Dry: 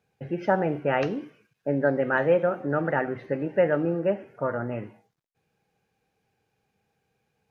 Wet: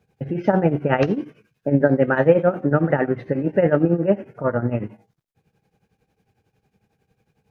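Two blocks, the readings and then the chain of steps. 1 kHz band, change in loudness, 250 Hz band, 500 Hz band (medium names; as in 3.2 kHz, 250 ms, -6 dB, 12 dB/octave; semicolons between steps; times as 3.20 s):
+3.0 dB, +6.0 dB, +8.5 dB, +5.5 dB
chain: tremolo triangle 11 Hz, depth 85%; bass shelf 360 Hz +9.5 dB; trim +6.5 dB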